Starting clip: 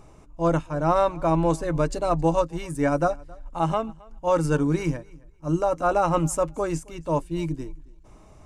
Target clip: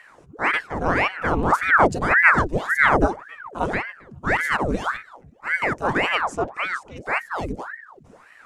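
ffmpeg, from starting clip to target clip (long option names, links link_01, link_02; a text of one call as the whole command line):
ffmpeg -i in.wav -filter_complex "[0:a]asettb=1/sr,asplit=3[link_01][link_02][link_03];[link_01]atrim=end=1.524[link_04];[link_02]atrim=start=1.52:end=3.06,asetpts=PTS-STARTPTS,afade=type=in:duration=0.004:curve=qsin,afade=type=out:start_time=1.536:duration=0.004:curve=qsin,equalizer=frequency=130:width=0.64:gain=13[link_05];[link_03]atrim=start=3.056[link_06];[link_04][link_05]acrossfade=duration=0.004:curve1=hsin:curve2=qsin[link_07];[link_07][link_06]acrossfade=duration=0.004:curve1=qsin:curve2=hsin,asettb=1/sr,asplit=3[link_08][link_09][link_10];[link_08]atrim=end=6.214[link_11];[link_09]atrim=start=6.21:end=6.97,asetpts=PTS-STARTPTS,afade=type=in:duration=0.004:curve=qsin,afade=type=out:start_time=0.756:duration=0.004:curve=qsin,lowpass=4700[link_12];[link_10]atrim=start=6.966[link_13];[link_11][link_12]acrossfade=duration=0.004:curve1=hsin:curve2=qsin[link_14];[link_14][link_13]acrossfade=duration=0.004:curve1=qsin:curve2=hsin,aeval=exprs='val(0)*sin(2*PI*990*n/s+990*0.9/1.8*sin(2*PI*1.8*n/s))':channel_layout=same,volume=2.5dB" out.wav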